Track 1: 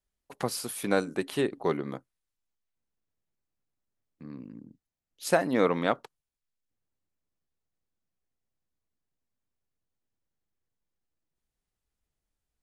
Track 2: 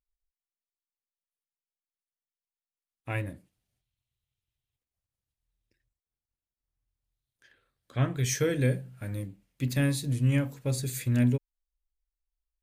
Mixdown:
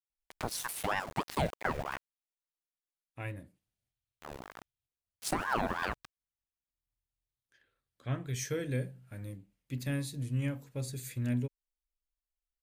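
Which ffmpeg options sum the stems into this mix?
-filter_complex "[0:a]aeval=exprs='val(0)*gte(abs(val(0)),0.0133)':c=same,aeval=exprs='val(0)*sin(2*PI*780*n/s+780*0.75/3.1*sin(2*PI*3.1*n/s))':c=same,volume=1.19[s0];[1:a]adelay=100,volume=0.398[s1];[s0][s1]amix=inputs=2:normalize=0,alimiter=limit=0.112:level=0:latency=1:release=171"

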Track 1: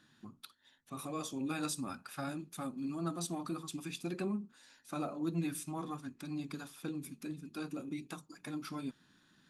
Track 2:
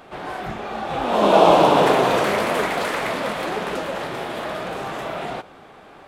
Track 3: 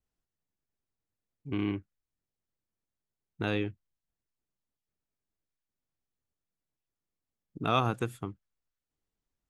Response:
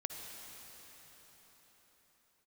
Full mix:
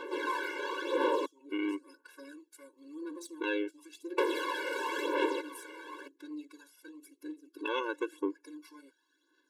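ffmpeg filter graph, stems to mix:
-filter_complex "[0:a]lowshelf=f=130:g=-4.5,aeval=exprs='(tanh(35.5*val(0)+0.4)-tanh(0.4))/35.5':c=same,volume=0.668[s0];[1:a]volume=1.19,asplit=3[s1][s2][s3];[s1]atrim=end=1.26,asetpts=PTS-STARTPTS,afade=t=out:st=1.256:d=0.004:c=hsin[s4];[s2]atrim=start=1.26:end=4.18,asetpts=PTS-STARTPTS,volume=0[s5];[s3]atrim=start=4.18,asetpts=PTS-STARTPTS,afade=t=in:d=0.004:c=hsin[s6];[s4][s5][s6]concat=n=3:v=0:a=1[s7];[2:a]lowshelf=f=150:g=4.5,deesser=0.65,aemphasis=mode=reproduction:type=50fm,volume=1.33,asplit=2[s8][s9];[s9]apad=whole_len=418614[s10];[s0][s10]sidechaincompress=threshold=0.00891:ratio=10:attack=16:release=111[s11];[s11][s7]amix=inputs=2:normalize=0,acompressor=threshold=0.0501:ratio=16,volume=1[s12];[s8][s12]amix=inputs=2:normalize=0,highpass=f=68:p=1,aphaser=in_gain=1:out_gain=1:delay=1.4:decay=0.57:speed=0.96:type=sinusoidal,afftfilt=real='re*eq(mod(floor(b*sr/1024/290),2),1)':imag='im*eq(mod(floor(b*sr/1024/290),2),1)':win_size=1024:overlap=0.75"

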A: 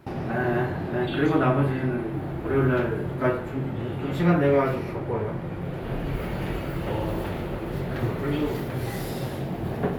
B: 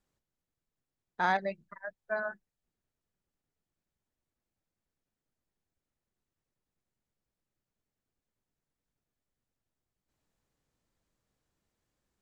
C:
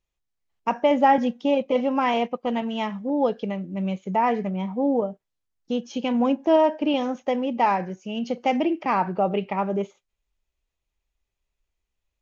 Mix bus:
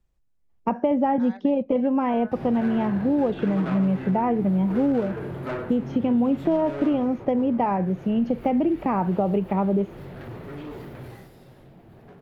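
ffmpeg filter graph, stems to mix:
-filter_complex "[0:a]asoftclip=type=hard:threshold=0.0596,adynamicequalizer=threshold=0.00562:dfrequency=3900:dqfactor=0.7:tfrequency=3900:tqfactor=0.7:attack=5:release=100:ratio=0.375:range=1.5:mode=cutabove:tftype=highshelf,adelay=2250,afade=t=out:st=6.84:d=0.3:silence=0.375837,afade=t=out:st=11.04:d=0.26:silence=0.298538[s0];[1:a]volume=0.708[s1];[2:a]lowpass=f=1100:p=1,lowshelf=f=400:g=11,volume=1.33[s2];[s0][s1]amix=inputs=2:normalize=0,alimiter=level_in=1.33:limit=0.0631:level=0:latency=1:release=255,volume=0.75,volume=1[s3];[s2][s3]amix=inputs=2:normalize=0,acrossover=split=97|3100[s4][s5][s6];[s4]acompressor=threshold=0.00501:ratio=4[s7];[s5]acompressor=threshold=0.1:ratio=4[s8];[s6]acompressor=threshold=0.00126:ratio=4[s9];[s7][s8][s9]amix=inputs=3:normalize=0"

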